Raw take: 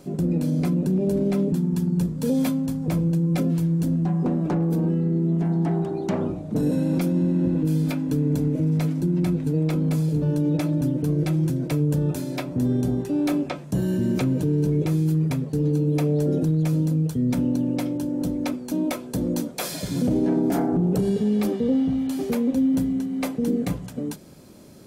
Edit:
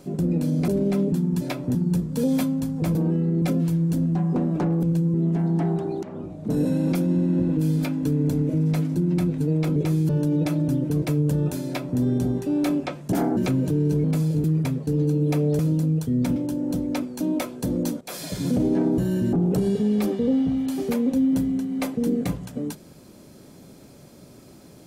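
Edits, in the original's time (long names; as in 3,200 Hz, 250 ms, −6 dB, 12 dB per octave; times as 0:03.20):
0:00.68–0:01.08: remove
0:03.01–0:03.32: swap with 0:04.73–0:05.20
0:06.09–0:06.64: fade in, from −17.5 dB
0:09.82–0:10.22: swap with 0:14.77–0:15.10
0:11.15–0:11.65: remove
0:12.29–0:12.63: duplicate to 0:01.81
0:13.75–0:14.10: swap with 0:20.49–0:20.74
0:16.25–0:16.67: remove
0:17.44–0:17.87: remove
0:19.52–0:19.97: fade in equal-power, from −13 dB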